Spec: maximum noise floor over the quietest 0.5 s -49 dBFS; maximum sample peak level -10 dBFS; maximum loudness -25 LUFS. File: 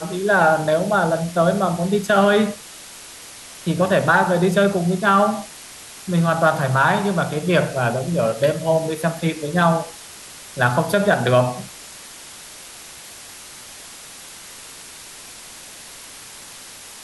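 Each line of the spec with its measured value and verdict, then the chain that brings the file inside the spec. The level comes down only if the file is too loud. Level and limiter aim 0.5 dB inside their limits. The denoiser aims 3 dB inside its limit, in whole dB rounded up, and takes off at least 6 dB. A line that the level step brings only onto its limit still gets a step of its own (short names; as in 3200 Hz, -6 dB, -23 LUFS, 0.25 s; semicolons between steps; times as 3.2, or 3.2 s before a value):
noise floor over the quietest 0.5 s -39 dBFS: fail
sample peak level -4.5 dBFS: fail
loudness -18.5 LUFS: fail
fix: denoiser 6 dB, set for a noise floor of -39 dBFS; gain -7 dB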